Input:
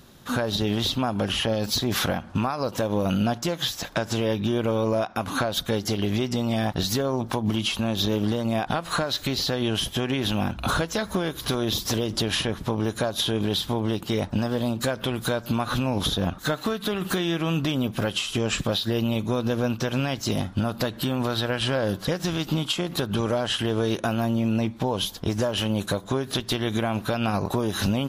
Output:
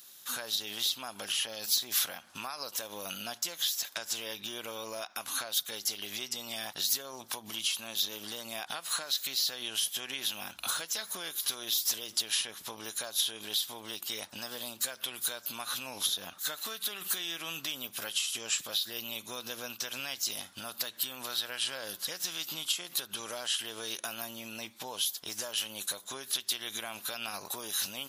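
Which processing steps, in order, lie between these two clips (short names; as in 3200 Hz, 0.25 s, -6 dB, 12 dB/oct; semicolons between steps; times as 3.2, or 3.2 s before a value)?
differentiator; in parallel at +1 dB: compressor, threshold -40 dBFS, peak gain reduction 15 dB; on the sum: gain -1 dB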